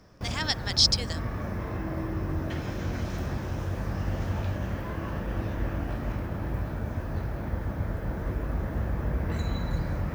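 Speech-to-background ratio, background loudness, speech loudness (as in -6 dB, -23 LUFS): 7.0 dB, -32.5 LUFS, -25.5 LUFS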